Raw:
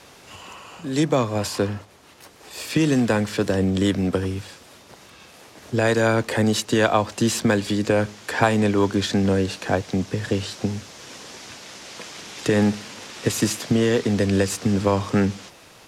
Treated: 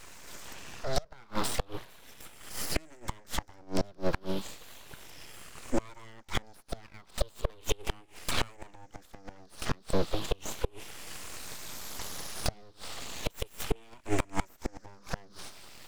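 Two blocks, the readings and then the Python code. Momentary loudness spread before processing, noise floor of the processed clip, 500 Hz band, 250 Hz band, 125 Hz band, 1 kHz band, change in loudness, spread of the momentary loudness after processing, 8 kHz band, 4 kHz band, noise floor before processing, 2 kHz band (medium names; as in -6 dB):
18 LU, -57 dBFS, -15.5 dB, -19.0 dB, -16.0 dB, -12.0 dB, -15.0 dB, 16 LU, -9.0 dB, -9.0 dB, -48 dBFS, -14.0 dB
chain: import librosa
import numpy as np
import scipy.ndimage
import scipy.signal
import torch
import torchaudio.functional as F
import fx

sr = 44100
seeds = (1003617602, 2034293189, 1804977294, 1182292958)

y = fx.spec_ripple(x, sr, per_octave=0.52, drift_hz=-0.35, depth_db=21)
y = np.abs(y)
y = fx.gate_flip(y, sr, shuts_db=-9.0, range_db=-30)
y = y * 10.0 ** (-4.5 / 20.0)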